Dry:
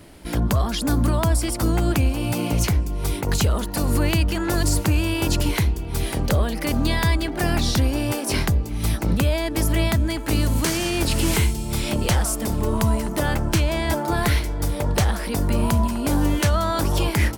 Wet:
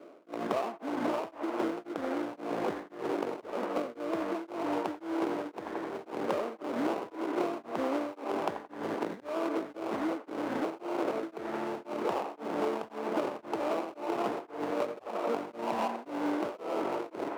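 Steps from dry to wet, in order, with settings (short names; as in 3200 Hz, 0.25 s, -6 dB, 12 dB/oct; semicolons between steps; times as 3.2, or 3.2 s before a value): LFO low-pass saw up 0.27 Hz 590–4900 Hz; sample-rate reducer 1800 Hz, jitter 20%; AGC gain up to 5.5 dB; HPF 350 Hz 24 dB/oct; tilt -4.5 dB/oct; on a send: band-limited delay 86 ms, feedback 68%, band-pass 1200 Hz, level -7 dB; on the sum: compressor, threshold -20 dBFS, peak gain reduction 13 dB; beating tremolo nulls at 1.9 Hz; gain -7 dB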